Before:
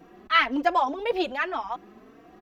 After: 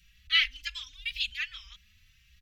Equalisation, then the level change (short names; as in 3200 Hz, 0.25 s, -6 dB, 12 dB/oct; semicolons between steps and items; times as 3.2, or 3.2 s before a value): inverse Chebyshev band-stop 330–750 Hz, stop band 80 dB; high shelf 5800 Hz -4.5 dB; +6.5 dB